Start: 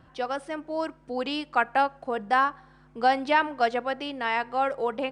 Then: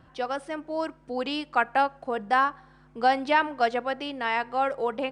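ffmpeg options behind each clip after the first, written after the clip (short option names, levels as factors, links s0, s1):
-af anull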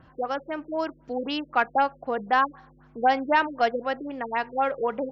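-af "acontrast=80,afftfilt=real='re*lt(b*sr/1024,500*pow(7600/500,0.5+0.5*sin(2*PI*3.9*pts/sr)))':imag='im*lt(b*sr/1024,500*pow(7600/500,0.5+0.5*sin(2*PI*3.9*pts/sr)))':win_size=1024:overlap=0.75,volume=0.531"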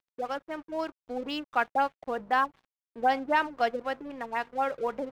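-af "aeval=exprs='sgn(val(0))*max(abs(val(0))-0.00562,0)':c=same,volume=0.668"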